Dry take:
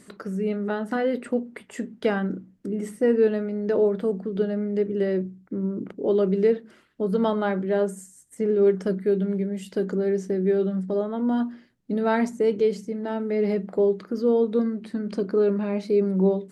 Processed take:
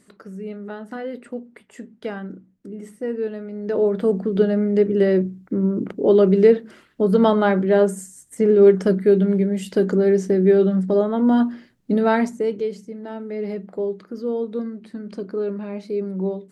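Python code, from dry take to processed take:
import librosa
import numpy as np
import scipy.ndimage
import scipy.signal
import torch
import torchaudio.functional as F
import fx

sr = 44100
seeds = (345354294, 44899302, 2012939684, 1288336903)

y = fx.gain(x, sr, db=fx.line((3.36, -6.0), (4.15, 7.0), (11.93, 7.0), (12.69, -4.0)))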